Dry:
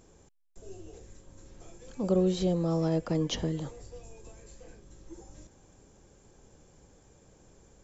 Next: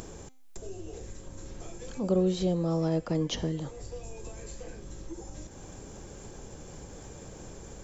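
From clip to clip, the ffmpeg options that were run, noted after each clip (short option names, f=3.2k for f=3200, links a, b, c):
-af "acompressor=mode=upward:threshold=-31dB:ratio=2.5,bandreject=f=259.9:t=h:w=4,bandreject=f=519.8:t=h:w=4,bandreject=f=779.7:t=h:w=4,bandreject=f=1.0396k:t=h:w=4,bandreject=f=1.2995k:t=h:w=4,bandreject=f=1.5594k:t=h:w=4,bandreject=f=1.8193k:t=h:w=4,bandreject=f=2.0792k:t=h:w=4,bandreject=f=2.3391k:t=h:w=4,bandreject=f=2.599k:t=h:w=4,bandreject=f=2.8589k:t=h:w=4,bandreject=f=3.1188k:t=h:w=4,bandreject=f=3.3787k:t=h:w=4,bandreject=f=3.6386k:t=h:w=4,bandreject=f=3.8985k:t=h:w=4,bandreject=f=4.1584k:t=h:w=4,bandreject=f=4.4183k:t=h:w=4,bandreject=f=4.6782k:t=h:w=4,bandreject=f=4.9381k:t=h:w=4,bandreject=f=5.198k:t=h:w=4,bandreject=f=5.4579k:t=h:w=4,bandreject=f=5.7178k:t=h:w=4,bandreject=f=5.9777k:t=h:w=4,bandreject=f=6.2376k:t=h:w=4,bandreject=f=6.4975k:t=h:w=4,bandreject=f=6.7574k:t=h:w=4,bandreject=f=7.0173k:t=h:w=4,bandreject=f=7.2772k:t=h:w=4,bandreject=f=7.5371k:t=h:w=4,bandreject=f=7.797k:t=h:w=4,bandreject=f=8.0569k:t=h:w=4,bandreject=f=8.3168k:t=h:w=4,bandreject=f=8.5767k:t=h:w=4,bandreject=f=8.8366k:t=h:w=4,bandreject=f=9.0965k:t=h:w=4"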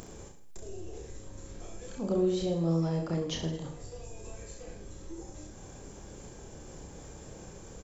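-af "aecho=1:1:30|66|109.2|161|223.2:0.631|0.398|0.251|0.158|0.1,volume=-4dB"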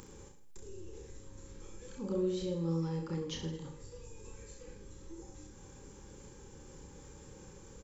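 -af "asuperstop=centerf=670:order=20:qfactor=3.6,volume=-5.5dB"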